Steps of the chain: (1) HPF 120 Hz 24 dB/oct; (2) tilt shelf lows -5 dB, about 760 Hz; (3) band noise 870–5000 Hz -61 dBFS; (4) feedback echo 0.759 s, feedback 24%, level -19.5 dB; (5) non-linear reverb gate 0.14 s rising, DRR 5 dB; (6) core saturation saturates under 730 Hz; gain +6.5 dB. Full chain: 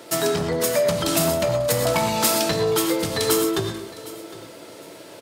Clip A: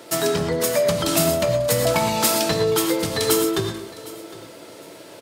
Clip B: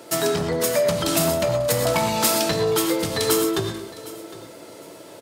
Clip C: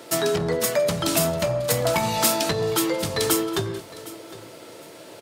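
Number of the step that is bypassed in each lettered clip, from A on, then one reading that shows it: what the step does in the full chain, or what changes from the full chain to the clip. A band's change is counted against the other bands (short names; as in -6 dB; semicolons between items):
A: 6, momentary loudness spread change -2 LU; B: 3, momentary loudness spread change -3 LU; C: 5, momentary loudness spread change +1 LU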